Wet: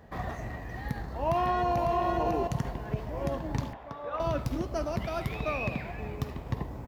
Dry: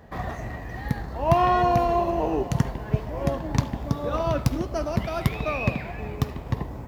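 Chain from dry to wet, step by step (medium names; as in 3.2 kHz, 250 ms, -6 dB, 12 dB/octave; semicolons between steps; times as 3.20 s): 0.83–1.92 s: echo throw 550 ms, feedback 10%, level -4.5 dB; 3.73–4.20 s: three-band isolator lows -17 dB, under 530 Hz, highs -19 dB, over 2.9 kHz; peak limiter -15.5 dBFS, peak gain reduction 8.5 dB; trim -4 dB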